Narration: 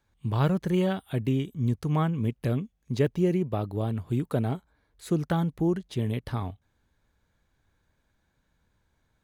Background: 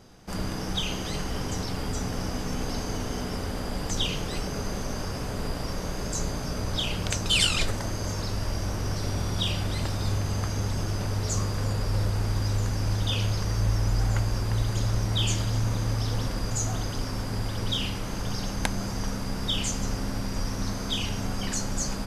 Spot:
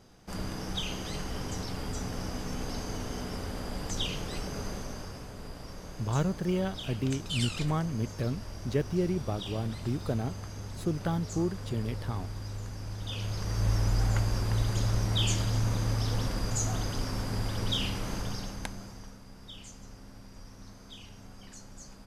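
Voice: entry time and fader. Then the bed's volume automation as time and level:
5.75 s, −4.5 dB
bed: 0:04.67 −5 dB
0:05.33 −12 dB
0:12.95 −12 dB
0:13.71 −2 dB
0:18.14 −2 dB
0:19.21 −19 dB

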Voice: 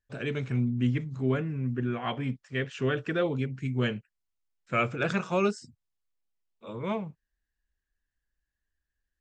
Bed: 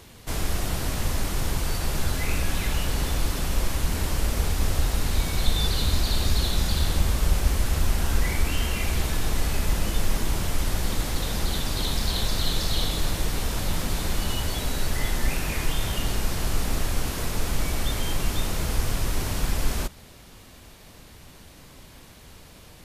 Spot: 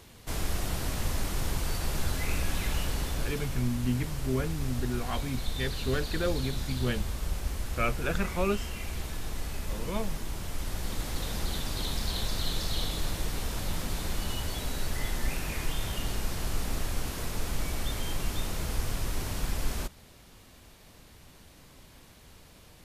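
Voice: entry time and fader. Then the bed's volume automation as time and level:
3.05 s, −3.0 dB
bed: 0:02.81 −4.5 dB
0:03.69 −10.5 dB
0:10.36 −10.5 dB
0:11.22 −6 dB

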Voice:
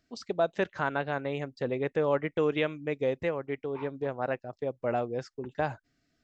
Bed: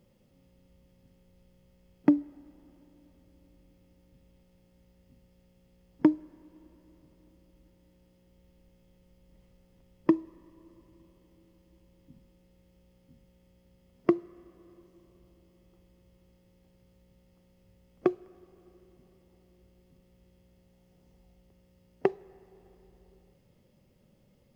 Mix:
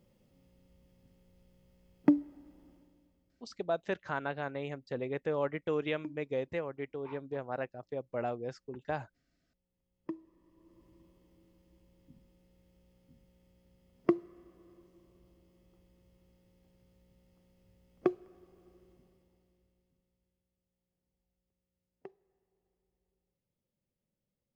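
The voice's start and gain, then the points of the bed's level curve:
3.30 s, −5.5 dB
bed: 0:02.71 −2.5 dB
0:03.70 −23 dB
0:09.76 −23 dB
0:10.86 −3.5 dB
0:18.92 −3.5 dB
0:20.50 −24 dB

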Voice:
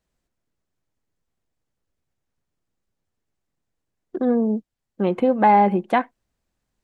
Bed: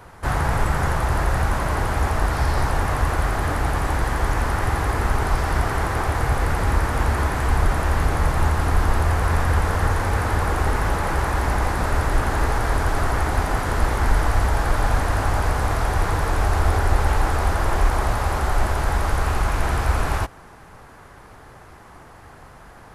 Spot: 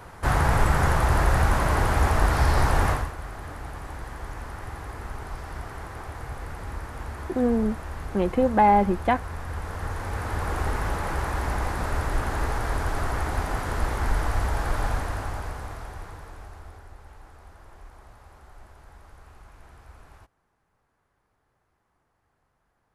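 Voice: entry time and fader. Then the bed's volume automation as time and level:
3.15 s, −3.0 dB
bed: 0:02.90 0 dB
0:03.13 −15 dB
0:09.38 −15 dB
0:10.57 −6 dB
0:14.85 −6 dB
0:16.97 −28.5 dB

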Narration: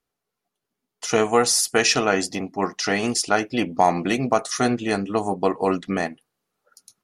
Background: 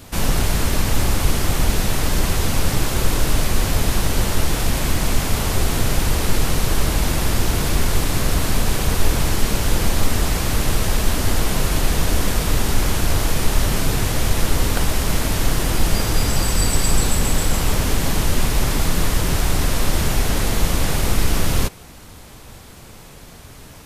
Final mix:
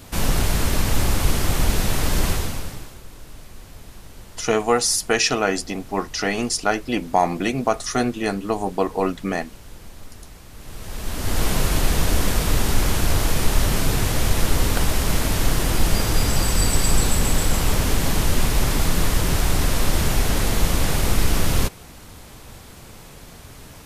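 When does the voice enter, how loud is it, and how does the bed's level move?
3.35 s, −0.5 dB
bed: 0:02.30 −1.5 dB
0:03.02 −23 dB
0:10.52 −23 dB
0:11.44 −1 dB

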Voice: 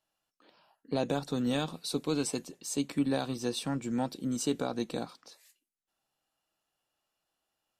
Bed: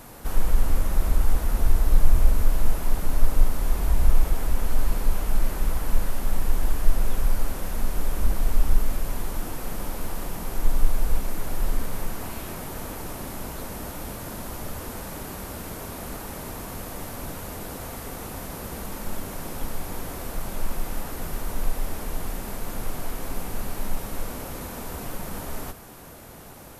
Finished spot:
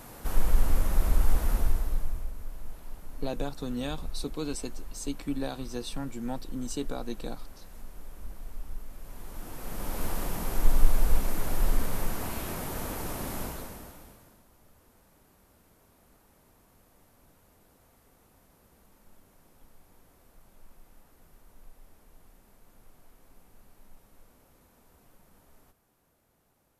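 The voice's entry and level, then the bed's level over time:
2.30 s, −3.5 dB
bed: 0:01.53 −2.5 dB
0:02.31 −19 dB
0:08.90 −19 dB
0:10.03 −0.5 dB
0:13.42 −0.5 dB
0:14.46 −26.5 dB

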